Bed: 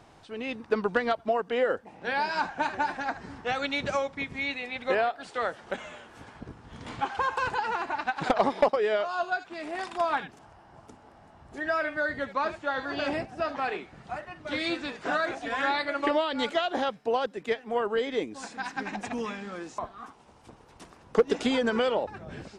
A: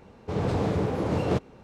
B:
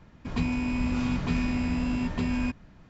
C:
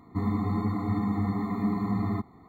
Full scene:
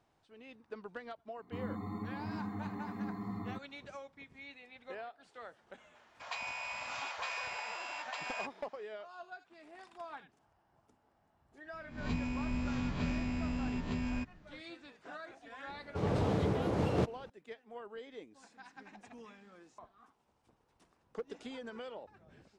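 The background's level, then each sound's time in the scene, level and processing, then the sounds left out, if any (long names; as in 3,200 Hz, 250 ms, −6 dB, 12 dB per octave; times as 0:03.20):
bed −19.5 dB
0:01.37: mix in C −11 dB + low-shelf EQ 90 Hz −10 dB
0:05.95: mix in B −2 dB + Butterworth high-pass 600 Hz 48 dB per octave
0:11.73: mix in B −9 dB + peak hold with a rise ahead of every peak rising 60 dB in 0.42 s
0:15.67: mix in A −5.5 dB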